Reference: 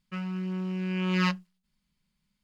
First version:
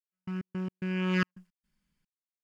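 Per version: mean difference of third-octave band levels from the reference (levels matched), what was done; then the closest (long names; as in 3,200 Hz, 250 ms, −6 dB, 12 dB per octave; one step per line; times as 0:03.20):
7.5 dB: thirty-one-band graphic EQ 315 Hz +5 dB, 500 Hz +3 dB, 1,600 Hz +6 dB, 4,000 Hz −7 dB
gate pattern "..x.x.xxx.x.xxx." 110 BPM −60 dB
level −1.5 dB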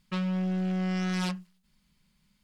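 4.0 dB: downward compressor 10 to 1, threshold −30 dBFS, peak gain reduction 9.5 dB
sine wavefolder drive 8 dB, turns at −23 dBFS
level −3.5 dB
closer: second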